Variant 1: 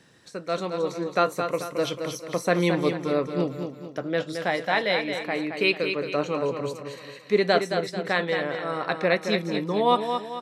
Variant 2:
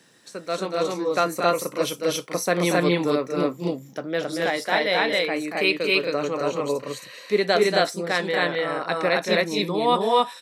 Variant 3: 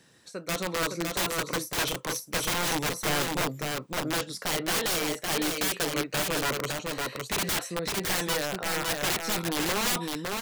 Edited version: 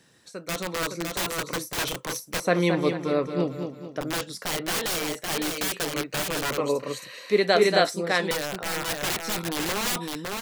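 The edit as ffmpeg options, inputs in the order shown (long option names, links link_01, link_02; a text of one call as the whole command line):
ffmpeg -i take0.wav -i take1.wav -i take2.wav -filter_complex "[2:a]asplit=3[link_01][link_02][link_03];[link_01]atrim=end=2.402[link_04];[0:a]atrim=start=2.398:end=4.012[link_05];[link_02]atrim=start=4.008:end=6.582[link_06];[1:a]atrim=start=6.578:end=8.312[link_07];[link_03]atrim=start=8.308[link_08];[link_04][link_05]acrossfade=duration=0.004:curve1=hsin:curve2=hsin[link_09];[link_09][link_06]acrossfade=duration=0.004:curve1=hsin:curve2=hsin[link_10];[link_10][link_07]acrossfade=duration=0.004:curve1=hsin:curve2=hsin[link_11];[link_11][link_08]acrossfade=duration=0.004:curve1=hsin:curve2=hsin" out.wav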